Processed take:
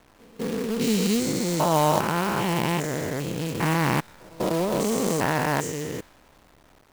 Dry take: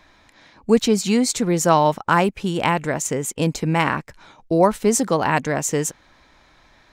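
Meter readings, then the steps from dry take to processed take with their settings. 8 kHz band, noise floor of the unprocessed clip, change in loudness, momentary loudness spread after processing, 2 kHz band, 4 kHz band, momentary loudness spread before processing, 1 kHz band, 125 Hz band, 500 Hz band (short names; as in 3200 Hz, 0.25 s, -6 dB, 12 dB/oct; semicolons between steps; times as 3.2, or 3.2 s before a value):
-7.0 dB, -55 dBFS, -5.0 dB, 9 LU, -4.0 dB, -2.5 dB, 7 LU, -5.0 dB, -2.5 dB, -5.5 dB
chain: stepped spectrum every 0.4 s; low-pass opened by the level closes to 670 Hz, open at -20 dBFS; pre-echo 0.199 s -24 dB; companded quantiser 4-bit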